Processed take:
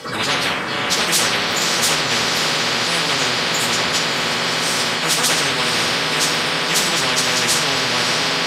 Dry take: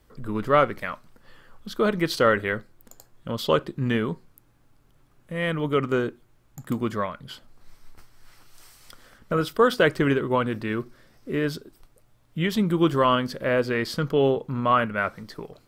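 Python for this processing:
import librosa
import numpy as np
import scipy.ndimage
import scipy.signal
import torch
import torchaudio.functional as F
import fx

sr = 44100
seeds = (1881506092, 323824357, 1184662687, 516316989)

p1 = fx.fade_out_tail(x, sr, length_s=1.6)
p2 = fx.high_shelf(p1, sr, hz=3400.0, db=11.5)
p3 = fx.hum_notches(p2, sr, base_hz=50, count=7)
p4 = fx.stretch_vocoder_free(p3, sr, factor=0.54)
p5 = 10.0 ** (-23.5 / 20.0) * np.tanh(p4 / 10.0 ** (-23.5 / 20.0))
p6 = p4 + F.gain(torch.from_numpy(p5), -7.5).numpy()
p7 = fx.bandpass_edges(p6, sr, low_hz=230.0, high_hz=5100.0)
p8 = p7 + fx.echo_diffused(p7, sr, ms=584, feedback_pct=75, wet_db=-11, dry=0)
p9 = fx.rev_fdn(p8, sr, rt60_s=0.47, lf_ratio=1.25, hf_ratio=0.8, size_ms=36.0, drr_db=-2.5)
y = fx.spectral_comp(p9, sr, ratio=10.0)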